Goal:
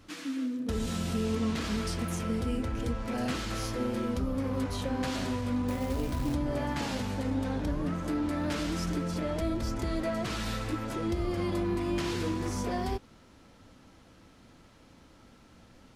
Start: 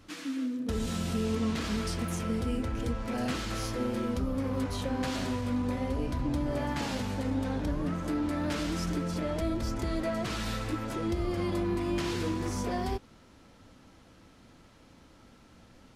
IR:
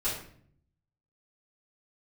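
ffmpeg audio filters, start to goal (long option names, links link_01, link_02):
-filter_complex "[0:a]asettb=1/sr,asplit=3[link_01][link_02][link_03];[link_01]atrim=end=5.684[link_04];[link_02]atrim=start=5.68:end=6.34,asetpts=PTS-STARTPTS,afade=type=in:duration=0.004:curve=qsin,afade=type=out:start_time=0.656:duration=0.004:curve=qsin,acrusher=bits=4:mode=log:mix=0:aa=0.000001[link_05];[link_03]atrim=start=6.336[link_06];[link_04][link_05]acrossfade=duration=0.004:curve1=hsin:curve2=qsin[link_07];[link_07][link_06]acrossfade=duration=0.004:curve1=qsin:curve2=hsin"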